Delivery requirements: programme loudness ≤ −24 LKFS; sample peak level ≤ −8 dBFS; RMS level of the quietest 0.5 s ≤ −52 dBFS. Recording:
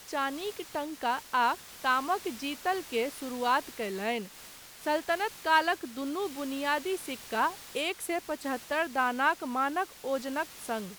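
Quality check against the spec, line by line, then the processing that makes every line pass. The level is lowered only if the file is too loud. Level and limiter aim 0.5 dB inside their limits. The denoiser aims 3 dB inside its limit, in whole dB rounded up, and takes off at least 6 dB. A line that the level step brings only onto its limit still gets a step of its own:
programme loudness −31.0 LKFS: in spec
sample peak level −13.0 dBFS: in spec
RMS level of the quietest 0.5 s −49 dBFS: out of spec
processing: broadband denoise 6 dB, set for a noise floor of −49 dBFS

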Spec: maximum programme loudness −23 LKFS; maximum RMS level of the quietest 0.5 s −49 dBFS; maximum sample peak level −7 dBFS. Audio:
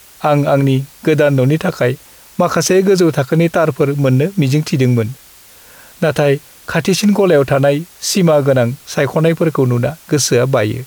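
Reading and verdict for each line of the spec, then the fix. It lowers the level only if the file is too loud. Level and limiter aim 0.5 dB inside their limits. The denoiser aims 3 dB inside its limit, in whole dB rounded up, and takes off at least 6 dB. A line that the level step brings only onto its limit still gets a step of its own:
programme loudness −14.0 LKFS: out of spec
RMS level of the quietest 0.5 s −42 dBFS: out of spec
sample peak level −3.0 dBFS: out of spec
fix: level −9.5 dB

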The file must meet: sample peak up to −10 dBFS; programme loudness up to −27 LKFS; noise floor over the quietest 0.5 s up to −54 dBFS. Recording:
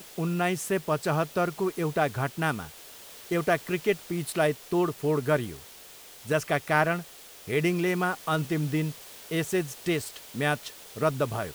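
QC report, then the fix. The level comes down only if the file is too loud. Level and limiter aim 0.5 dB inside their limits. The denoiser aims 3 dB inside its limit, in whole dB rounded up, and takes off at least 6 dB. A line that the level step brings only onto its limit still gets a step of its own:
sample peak −9.0 dBFS: out of spec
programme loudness −28.0 LKFS: in spec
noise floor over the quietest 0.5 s −48 dBFS: out of spec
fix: broadband denoise 9 dB, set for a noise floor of −48 dBFS
brickwall limiter −10.5 dBFS

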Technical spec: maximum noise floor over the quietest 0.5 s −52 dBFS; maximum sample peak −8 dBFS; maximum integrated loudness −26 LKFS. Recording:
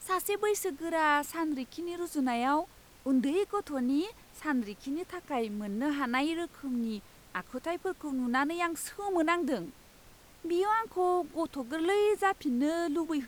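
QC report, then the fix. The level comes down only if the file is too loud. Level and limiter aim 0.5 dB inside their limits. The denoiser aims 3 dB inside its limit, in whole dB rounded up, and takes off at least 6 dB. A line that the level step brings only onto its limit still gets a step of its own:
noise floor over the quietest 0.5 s −56 dBFS: in spec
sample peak −15.5 dBFS: in spec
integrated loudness −31.5 LKFS: in spec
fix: no processing needed

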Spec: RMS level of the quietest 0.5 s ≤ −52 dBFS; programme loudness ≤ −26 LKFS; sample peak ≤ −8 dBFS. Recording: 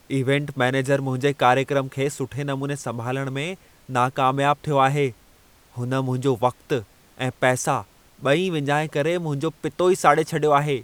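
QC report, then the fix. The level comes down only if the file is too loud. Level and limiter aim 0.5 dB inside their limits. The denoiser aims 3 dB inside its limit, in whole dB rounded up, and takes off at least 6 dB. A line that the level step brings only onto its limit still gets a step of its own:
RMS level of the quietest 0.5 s −54 dBFS: in spec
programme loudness −22.5 LKFS: out of spec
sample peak −2.0 dBFS: out of spec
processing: level −4 dB
brickwall limiter −8.5 dBFS

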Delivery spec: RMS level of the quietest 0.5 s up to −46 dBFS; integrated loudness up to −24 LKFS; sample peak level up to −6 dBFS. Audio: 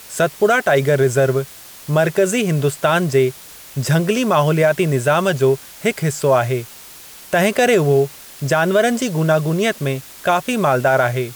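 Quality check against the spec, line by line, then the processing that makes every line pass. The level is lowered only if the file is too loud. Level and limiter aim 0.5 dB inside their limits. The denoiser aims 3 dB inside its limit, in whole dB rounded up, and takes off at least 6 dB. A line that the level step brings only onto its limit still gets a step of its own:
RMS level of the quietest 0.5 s −39 dBFS: out of spec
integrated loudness −17.0 LKFS: out of spec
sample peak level −5.0 dBFS: out of spec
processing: level −7.5 dB

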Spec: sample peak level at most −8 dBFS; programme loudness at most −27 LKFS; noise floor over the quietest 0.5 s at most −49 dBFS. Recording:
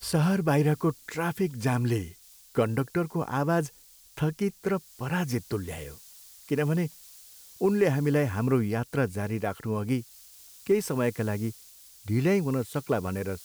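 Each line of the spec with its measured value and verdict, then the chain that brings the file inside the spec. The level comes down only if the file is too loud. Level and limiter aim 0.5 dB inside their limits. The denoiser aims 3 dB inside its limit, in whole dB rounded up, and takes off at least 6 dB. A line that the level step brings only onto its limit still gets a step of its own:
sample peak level −12.0 dBFS: in spec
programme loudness −28.0 LKFS: in spec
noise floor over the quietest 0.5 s −54 dBFS: in spec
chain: no processing needed

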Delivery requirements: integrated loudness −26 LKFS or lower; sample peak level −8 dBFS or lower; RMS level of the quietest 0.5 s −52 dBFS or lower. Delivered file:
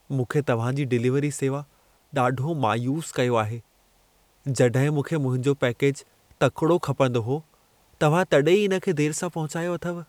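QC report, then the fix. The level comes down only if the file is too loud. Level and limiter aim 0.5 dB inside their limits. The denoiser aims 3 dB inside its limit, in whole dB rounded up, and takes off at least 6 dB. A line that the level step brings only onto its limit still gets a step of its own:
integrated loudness −24.0 LKFS: out of spec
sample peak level −7.0 dBFS: out of spec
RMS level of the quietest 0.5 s −62 dBFS: in spec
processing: level −2.5 dB

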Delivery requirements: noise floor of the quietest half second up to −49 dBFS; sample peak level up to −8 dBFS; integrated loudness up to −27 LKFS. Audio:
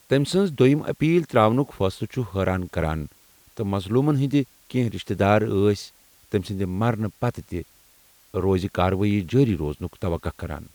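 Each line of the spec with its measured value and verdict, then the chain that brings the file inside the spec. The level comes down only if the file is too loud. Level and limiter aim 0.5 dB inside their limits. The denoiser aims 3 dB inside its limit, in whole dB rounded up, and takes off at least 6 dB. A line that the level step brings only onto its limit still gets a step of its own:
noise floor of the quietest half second −56 dBFS: in spec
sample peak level −4.0 dBFS: out of spec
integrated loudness −23.5 LKFS: out of spec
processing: level −4 dB
brickwall limiter −8.5 dBFS

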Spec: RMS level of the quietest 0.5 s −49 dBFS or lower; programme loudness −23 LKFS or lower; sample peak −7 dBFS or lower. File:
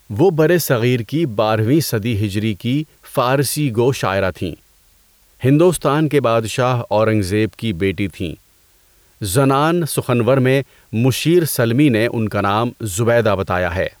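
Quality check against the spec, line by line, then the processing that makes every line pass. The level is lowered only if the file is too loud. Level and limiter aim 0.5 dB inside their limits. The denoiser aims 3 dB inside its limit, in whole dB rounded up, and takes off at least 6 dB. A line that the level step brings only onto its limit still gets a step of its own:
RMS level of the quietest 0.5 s −54 dBFS: in spec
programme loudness −17.0 LKFS: out of spec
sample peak −4.5 dBFS: out of spec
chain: level −6.5 dB

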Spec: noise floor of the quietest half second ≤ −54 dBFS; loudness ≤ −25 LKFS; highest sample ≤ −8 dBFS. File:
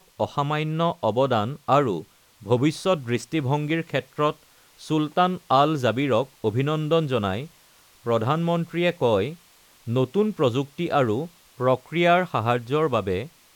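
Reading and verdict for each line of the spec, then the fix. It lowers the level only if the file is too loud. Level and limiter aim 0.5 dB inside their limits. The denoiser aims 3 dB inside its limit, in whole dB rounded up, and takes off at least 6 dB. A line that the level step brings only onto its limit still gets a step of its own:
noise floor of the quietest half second −55 dBFS: in spec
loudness −23.5 LKFS: out of spec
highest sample −5.5 dBFS: out of spec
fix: level −2 dB
brickwall limiter −8.5 dBFS

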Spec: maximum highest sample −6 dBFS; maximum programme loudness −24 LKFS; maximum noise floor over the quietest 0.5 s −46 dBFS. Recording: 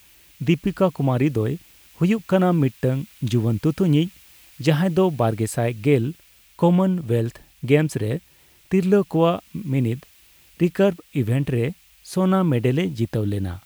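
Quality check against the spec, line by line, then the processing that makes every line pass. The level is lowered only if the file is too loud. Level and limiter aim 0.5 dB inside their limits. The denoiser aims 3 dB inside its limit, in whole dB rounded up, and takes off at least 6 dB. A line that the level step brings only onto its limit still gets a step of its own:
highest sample −4.0 dBFS: out of spec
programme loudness −21.5 LKFS: out of spec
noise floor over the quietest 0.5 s −54 dBFS: in spec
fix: level −3 dB

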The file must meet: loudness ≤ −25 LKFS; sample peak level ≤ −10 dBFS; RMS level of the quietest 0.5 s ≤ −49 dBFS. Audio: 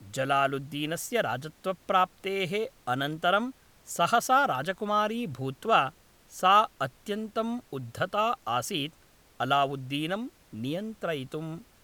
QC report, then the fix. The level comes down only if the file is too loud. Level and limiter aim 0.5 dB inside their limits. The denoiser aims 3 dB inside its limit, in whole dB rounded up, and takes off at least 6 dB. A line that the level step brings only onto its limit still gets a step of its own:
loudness −28.5 LKFS: in spec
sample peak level −9.0 dBFS: out of spec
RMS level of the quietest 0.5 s −59 dBFS: in spec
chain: brickwall limiter −10.5 dBFS

